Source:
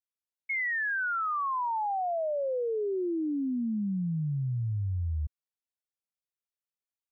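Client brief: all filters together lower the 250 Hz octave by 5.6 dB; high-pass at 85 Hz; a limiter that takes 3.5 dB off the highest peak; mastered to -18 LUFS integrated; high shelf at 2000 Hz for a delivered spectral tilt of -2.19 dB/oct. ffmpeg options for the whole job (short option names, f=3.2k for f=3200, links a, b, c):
-af "highpass=85,equalizer=f=250:t=o:g=-8,highshelf=f=2k:g=5.5,volume=14.5dB,alimiter=limit=-13dB:level=0:latency=1"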